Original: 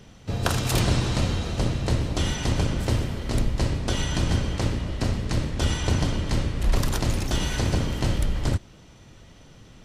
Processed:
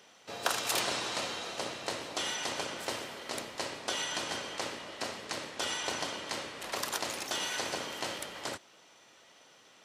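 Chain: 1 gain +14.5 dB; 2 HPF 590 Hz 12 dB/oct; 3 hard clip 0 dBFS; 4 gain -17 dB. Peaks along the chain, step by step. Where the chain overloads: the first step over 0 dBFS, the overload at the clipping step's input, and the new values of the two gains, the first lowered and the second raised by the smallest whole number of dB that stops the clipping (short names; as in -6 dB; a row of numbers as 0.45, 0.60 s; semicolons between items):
+6.5, +5.0, 0.0, -17.0 dBFS; step 1, 5.0 dB; step 1 +9.5 dB, step 4 -12 dB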